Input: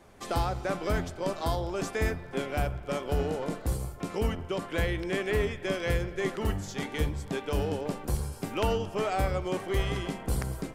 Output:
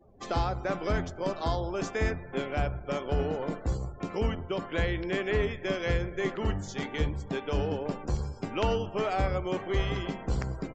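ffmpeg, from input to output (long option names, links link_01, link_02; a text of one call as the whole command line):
ffmpeg -i in.wav -af "afftdn=noise_reduction=28:noise_floor=-51,aresample=16000,aresample=44100" out.wav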